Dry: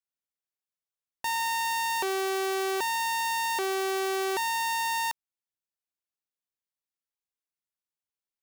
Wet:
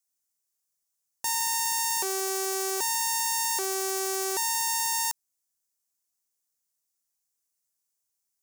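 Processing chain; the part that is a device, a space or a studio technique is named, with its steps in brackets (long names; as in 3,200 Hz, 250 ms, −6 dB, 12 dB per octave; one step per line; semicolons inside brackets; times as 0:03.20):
over-bright horn tweeter (high shelf with overshoot 4,600 Hz +11 dB, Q 1.5; brickwall limiter −16 dBFS, peak gain reduction 5.5 dB)
level +2.5 dB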